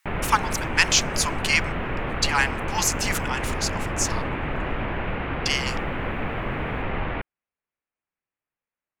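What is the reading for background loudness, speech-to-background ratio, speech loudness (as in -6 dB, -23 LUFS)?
-29.0 LUFS, 4.5 dB, -24.5 LUFS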